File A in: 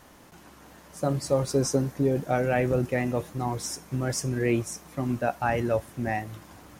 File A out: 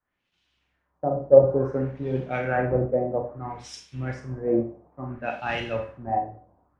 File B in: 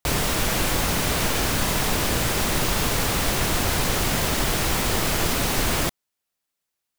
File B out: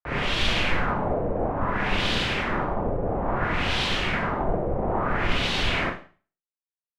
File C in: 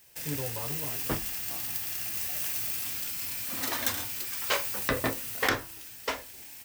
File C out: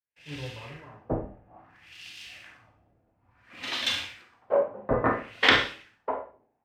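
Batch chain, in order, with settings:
LFO low-pass sine 0.59 Hz 570–3400 Hz; Schroeder reverb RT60 0.53 s, combs from 31 ms, DRR 3 dB; three bands expanded up and down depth 100%; trim -4 dB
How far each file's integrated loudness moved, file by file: +2.5 LU, -3.5 LU, +3.0 LU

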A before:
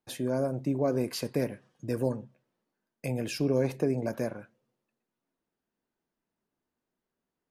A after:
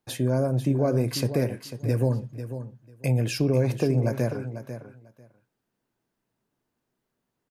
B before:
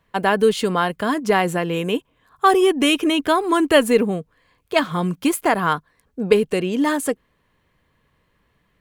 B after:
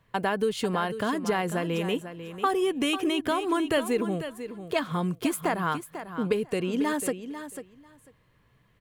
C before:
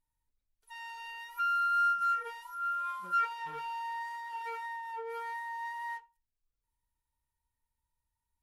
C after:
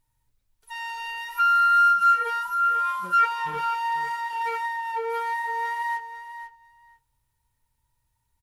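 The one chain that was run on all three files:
peaking EQ 120 Hz +11.5 dB 0.32 oct; compression 2.5:1, threshold -25 dBFS; on a send: feedback delay 495 ms, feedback 15%, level -11 dB; on the sum: peak normalisation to -12 dBFS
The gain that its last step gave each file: +5.5 dB, -1.5 dB, +11.0 dB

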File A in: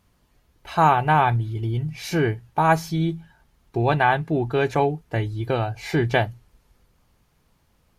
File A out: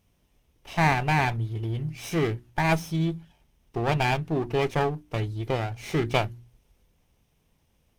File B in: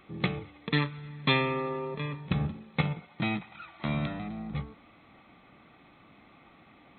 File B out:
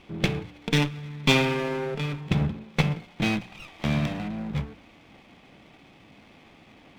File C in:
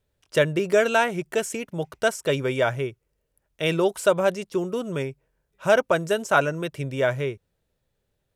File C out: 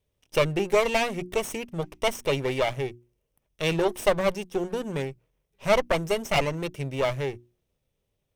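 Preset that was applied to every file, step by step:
comb filter that takes the minimum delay 0.33 ms; hum notches 60/120/180/240/300/360 Hz; normalise loudness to -27 LUFS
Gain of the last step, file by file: -3.0 dB, +5.5 dB, -1.0 dB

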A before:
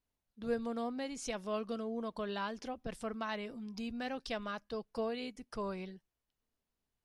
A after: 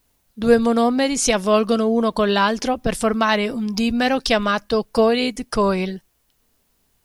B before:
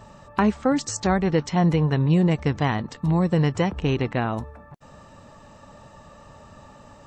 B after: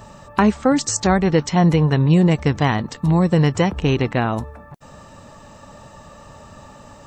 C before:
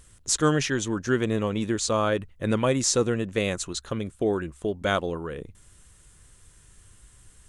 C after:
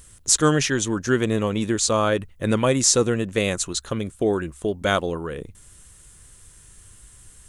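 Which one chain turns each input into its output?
treble shelf 7.6 kHz +8 dB; peak normalisation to -2 dBFS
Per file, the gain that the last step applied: +20.5 dB, +4.5 dB, +3.5 dB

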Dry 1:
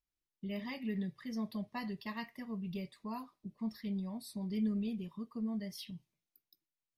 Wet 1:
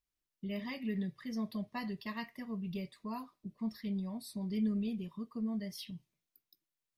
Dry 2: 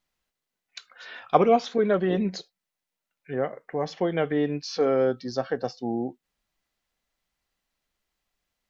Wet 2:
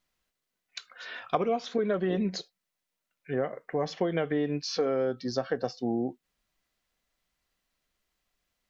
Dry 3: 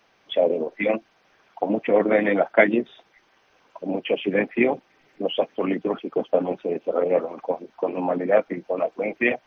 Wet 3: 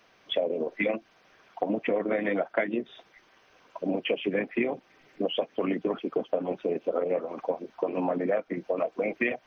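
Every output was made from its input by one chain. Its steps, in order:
band-stop 840 Hz, Q 12; compression 6:1, threshold -25 dBFS; trim +1 dB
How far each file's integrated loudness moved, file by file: +1.0 LU, -4.5 LU, -6.5 LU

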